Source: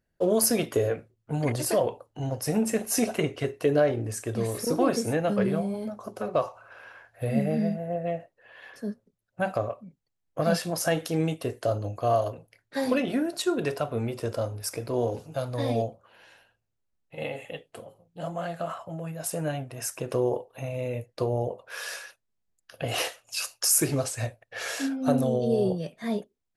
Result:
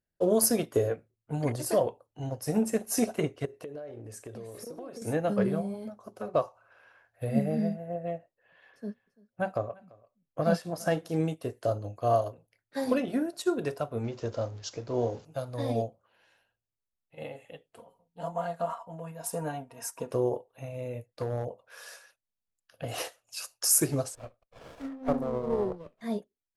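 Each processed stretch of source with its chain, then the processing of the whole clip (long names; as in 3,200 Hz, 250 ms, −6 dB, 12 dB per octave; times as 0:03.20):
0:03.45–0:05.02: parametric band 510 Hz +6 dB 1.1 octaves + downward compressor 10 to 1, threshold −31 dBFS
0:08.18–0:11.10: parametric band 11,000 Hz −5.5 dB 1.8 octaves + single-tap delay 340 ms −17.5 dB
0:14.04–0:15.25: converter with a step at zero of −42.5 dBFS + bad sample-rate conversion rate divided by 3×, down none, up filtered
0:17.78–0:20.11: parametric band 940 Hz +12.5 dB 0.33 octaves + comb filter 4.3 ms, depth 56%
0:21.06–0:22.97: notch filter 380 Hz, Q 7.5 + hard clipping −22 dBFS
0:24.15–0:26.01: three-way crossover with the lows and the highs turned down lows −13 dB, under 250 Hz, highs −15 dB, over 2,100 Hz + windowed peak hold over 17 samples
whole clip: dynamic equaliser 2,600 Hz, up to −5 dB, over −45 dBFS, Q 1; expander for the loud parts 1.5 to 1, over −43 dBFS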